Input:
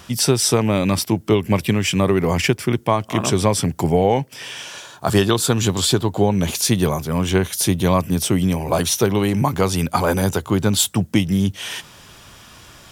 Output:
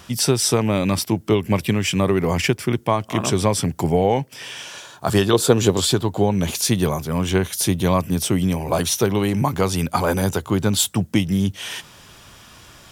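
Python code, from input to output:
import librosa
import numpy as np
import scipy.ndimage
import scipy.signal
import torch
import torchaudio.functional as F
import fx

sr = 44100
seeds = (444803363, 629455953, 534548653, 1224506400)

y = fx.peak_eq(x, sr, hz=470.0, db=9.5, octaves=1.2, at=(5.33, 5.8))
y = y * librosa.db_to_amplitude(-1.5)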